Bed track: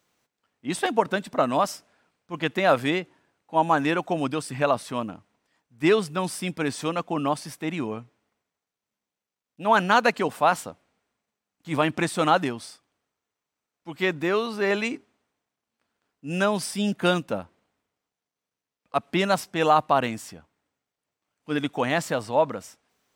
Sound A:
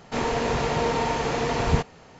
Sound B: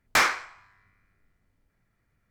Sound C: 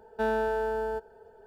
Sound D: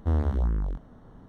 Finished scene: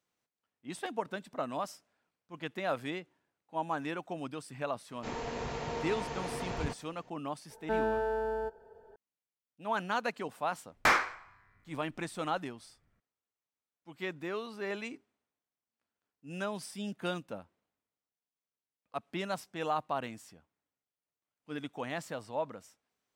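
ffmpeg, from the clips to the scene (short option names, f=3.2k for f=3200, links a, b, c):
-filter_complex "[0:a]volume=-13.5dB[a];[1:a]alimiter=limit=-11dB:level=0:latency=1:release=71[b];[3:a]highshelf=f=3.7k:g=-6.5[c];[2:a]highshelf=f=2.8k:g=-11[d];[b]atrim=end=2.19,asetpts=PTS-STARTPTS,volume=-13dB,afade=t=in:d=0.004:c=hsin,afade=t=out:st=2.186:d=0.004:c=hsin,adelay=4910[e];[c]atrim=end=1.46,asetpts=PTS-STARTPTS,volume=-3dB,afade=t=in:d=0.004:c=hsin,afade=t=out:st=1.456:d=0.004:c=hsin,adelay=7500[f];[d]atrim=end=2.3,asetpts=PTS-STARTPTS,volume=-1dB,afade=t=in:d=0.004:c=hsin,afade=t=out:st=2.296:d=0.004:c=hsin,adelay=10700[g];[a][e][f][g]amix=inputs=4:normalize=0"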